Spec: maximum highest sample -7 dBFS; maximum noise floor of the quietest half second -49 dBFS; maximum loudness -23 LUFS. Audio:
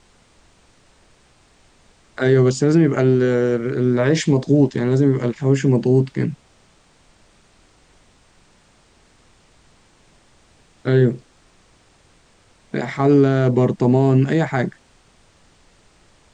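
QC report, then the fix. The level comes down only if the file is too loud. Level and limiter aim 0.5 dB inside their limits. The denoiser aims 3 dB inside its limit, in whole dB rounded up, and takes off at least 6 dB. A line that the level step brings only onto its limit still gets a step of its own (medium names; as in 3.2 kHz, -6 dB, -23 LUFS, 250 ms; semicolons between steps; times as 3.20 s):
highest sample -5.5 dBFS: fail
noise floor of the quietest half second -55 dBFS: pass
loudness -17.5 LUFS: fail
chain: trim -6 dB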